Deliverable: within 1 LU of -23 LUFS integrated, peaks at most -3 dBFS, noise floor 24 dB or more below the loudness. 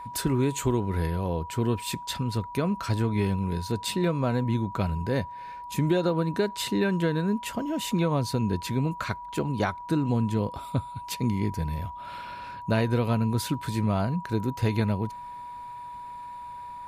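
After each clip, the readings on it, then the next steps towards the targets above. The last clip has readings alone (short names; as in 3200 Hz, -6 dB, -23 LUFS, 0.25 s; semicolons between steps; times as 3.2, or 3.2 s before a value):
steady tone 970 Hz; tone level -37 dBFS; loudness -28.0 LUFS; peak -12.5 dBFS; loudness target -23.0 LUFS
-> notch 970 Hz, Q 30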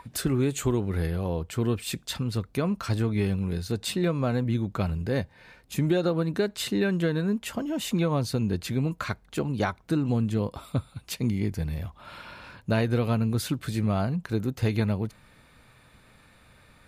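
steady tone none; loudness -28.0 LUFS; peak -13.0 dBFS; loudness target -23.0 LUFS
-> gain +5 dB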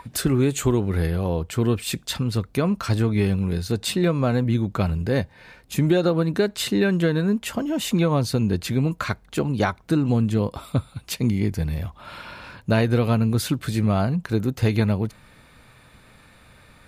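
loudness -23.0 LUFS; peak -8.0 dBFS; noise floor -52 dBFS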